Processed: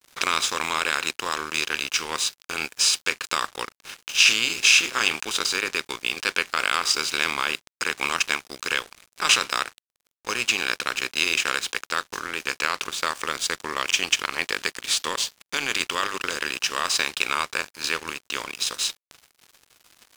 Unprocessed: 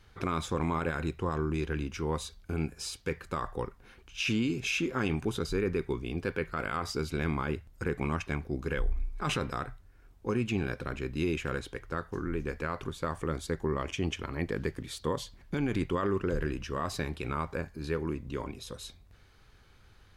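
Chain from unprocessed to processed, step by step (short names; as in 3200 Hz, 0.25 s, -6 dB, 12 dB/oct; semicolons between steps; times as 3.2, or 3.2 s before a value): per-bin compression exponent 0.6; expander -39 dBFS; low shelf 470 Hz -5 dB; notches 50/100/150/200/250/300/350/400 Hz; transient shaper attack +1 dB, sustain -4 dB; weighting filter ITU-R 468; crossover distortion -40.5 dBFS; gain +6 dB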